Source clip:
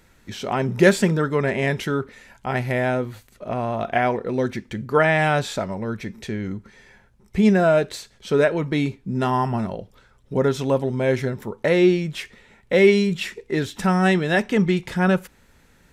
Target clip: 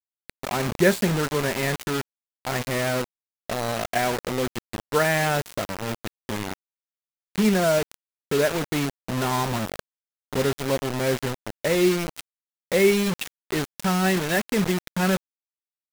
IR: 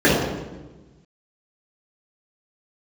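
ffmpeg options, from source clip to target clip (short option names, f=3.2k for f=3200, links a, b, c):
-af "acrusher=bits=3:mix=0:aa=0.000001,volume=-4dB"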